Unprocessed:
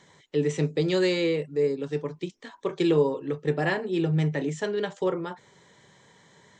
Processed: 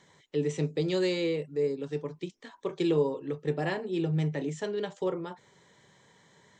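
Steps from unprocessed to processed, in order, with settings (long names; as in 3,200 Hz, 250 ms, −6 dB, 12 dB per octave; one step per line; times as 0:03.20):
dynamic equaliser 1,600 Hz, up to −4 dB, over −44 dBFS, Q 1.6
level −4 dB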